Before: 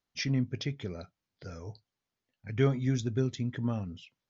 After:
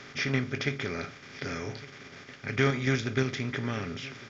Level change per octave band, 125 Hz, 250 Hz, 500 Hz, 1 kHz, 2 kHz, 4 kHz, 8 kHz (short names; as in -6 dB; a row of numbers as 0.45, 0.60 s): -1.0 dB, +0.5 dB, +3.0 dB, +8.5 dB, +12.0 dB, +5.0 dB, n/a